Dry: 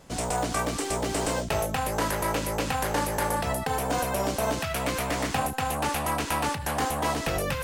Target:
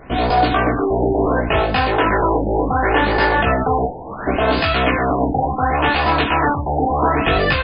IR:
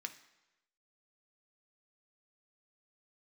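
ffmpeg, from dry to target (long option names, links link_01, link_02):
-filter_complex "[0:a]aecho=1:1:2.8:0.36,asplit=2[link_01][link_02];[link_02]alimiter=limit=-20.5dB:level=0:latency=1,volume=3dB[link_03];[link_01][link_03]amix=inputs=2:normalize=0,asplit=3[link_04][link_05][link_06];[link_04]afade=type=out:start_time=3.85:duration=0.02[link_07];[link_05]aeval=exprs='0.0501*(abs(mod(val(0)/0.0501+3,4)-2)-1)':channel_layout=same,afade=type=in:start_time=3.85:duration=0.02,afade=type=out:start_time=4.26:duration=0.02[link_08];[link_06]afade=type=in:start_time=4.26:duration=0.02[link_09];[link_07][link_08][link_09]amix=inputs=3:normalize=0,flanger=delay=2.7:depth=9.6:regen=-84:speed=0.34:shape=triangular,asplit=2[link_10][link_11];[1:a]atrim=start_sample=2205,adelay=16[link_12];[link_11][link_12]afir=irnorm=-1:irlink=0,volume=2dB[link_13];[link_10][link_13]amix=inputs=2:normalize=0,afftfilt=real='re*lt(b*sr/1024,920*pow(5100/920,0.5+0.5*sin(2*PI*0.7*pts/sr)))':imag='im*lt(b*sr/1024,920*pow(5100/920,0.5+0.5*sin(2*PI*0.7*pts/sr)))':win_size=1024:overlap=0.75,volume=8.5dB"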